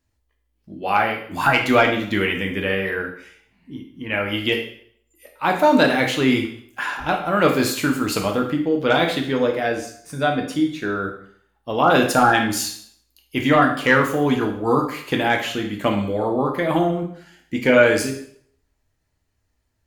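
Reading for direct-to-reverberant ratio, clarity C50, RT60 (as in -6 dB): 1.5 dB, 7.5 dB, 0.60 s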